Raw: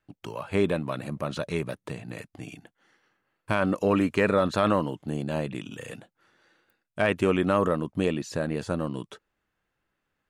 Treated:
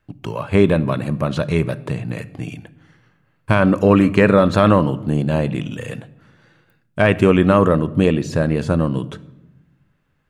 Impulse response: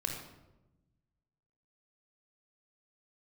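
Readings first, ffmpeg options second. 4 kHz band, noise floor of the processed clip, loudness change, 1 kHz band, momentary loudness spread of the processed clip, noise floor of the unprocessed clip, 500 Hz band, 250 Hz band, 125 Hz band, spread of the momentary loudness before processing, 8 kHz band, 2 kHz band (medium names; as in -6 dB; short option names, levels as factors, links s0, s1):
+7.0 dB, -64 dBFS, +10.0 dB, +8.0 dB, 17 LU, -81 dBFS, +9.0 dB, +11.0 dB, +13.5 dB, 18 LU, no reading, +8.0 dB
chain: -filter_complex "[0:a]bass=f=250:g=6,treble=f=4000:g=-4,asplit=2[s0][s1];[1:a]atrim=start_sample=2205[s2];[s1][s2]afir=irnorm=-1:irlink=0,volume=0.178[s3];[s0][s3]amix=inputs=2:normalize=0,volume=2.24"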